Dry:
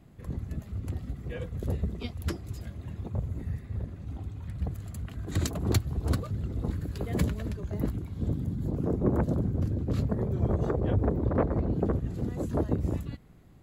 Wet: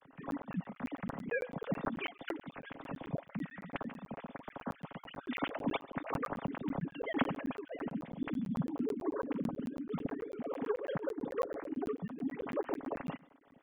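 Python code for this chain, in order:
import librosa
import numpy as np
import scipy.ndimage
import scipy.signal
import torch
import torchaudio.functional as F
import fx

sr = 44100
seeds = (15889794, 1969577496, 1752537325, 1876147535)

p1 = fx.sine_speech(x, sr)
p2 = fx.high_shelf(p1, sr, hz=2400.0, db=8.5)
p3 = p2 + 0.33 * np.pad(p2, (int(7.3 * sr / 1000.0), 0))[:len(p2)]
p4 = p3 + fx.echo_single(p3, sr, ms=137, db=-23.5, dry=0)
p5 = fx.rider(p4, sr, range_db=4, speed_s=2.0)
p6 = fx.peak_eq(p5, sr, hz=370.0, db=-12.5, octaves=0.22)
p7 = fx.buffer_crackle(p6, sr, first_s=0.31, period_s=0.11, block=512, kind='zero')
y = F.gain(torch.from_numpy(p7), -7.0).numpy()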